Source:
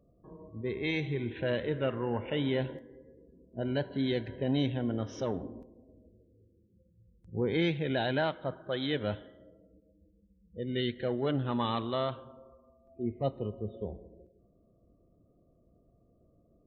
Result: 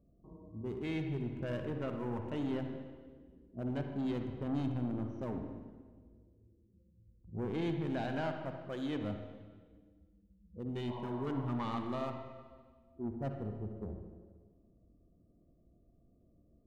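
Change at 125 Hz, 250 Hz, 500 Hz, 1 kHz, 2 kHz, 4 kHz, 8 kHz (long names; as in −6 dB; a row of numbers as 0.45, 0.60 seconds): −4.0 dB, −3.5 dB, −8.0 dB, −5.0 dB, −10.0 dB, −13.5 dB, can't be measured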